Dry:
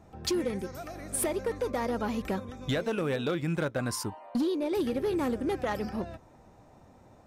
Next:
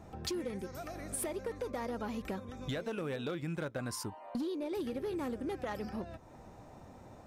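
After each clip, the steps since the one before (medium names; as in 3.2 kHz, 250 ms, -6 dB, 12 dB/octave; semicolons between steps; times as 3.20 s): compression 2:1, threshold -47 dBFS, peak gain reduction 11.5 dB; trim +3 dB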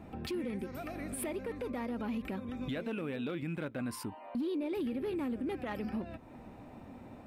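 fifteen-band graphic EQ 250 Hz +9 dB, 2.5 kHz +7 dB, 6.3 kHz -11 dB; peak limiter -29.5 dBFS, peak gain reduction 8 dB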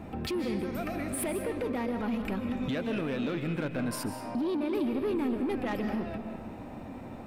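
saturation -33 dBFS, distortion -17 dB; on a send at -6.5 dB: reverberation RT60 1.4 s, pre-delay 110 ms; on the sum: trim +7 dB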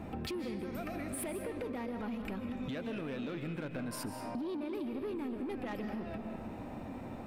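compression 4:1, threshold -36 dBFS, peak gain reduction 8.5 dB; trim -1 dB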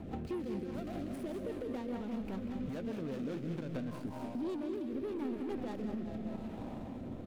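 median filter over 25 samples; rotary cabinet horn 5 Hz, later 0.85 Hz, at 3.88 s; feedback delay 189 ms, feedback 51%, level -10 dB; trim +1.5 dB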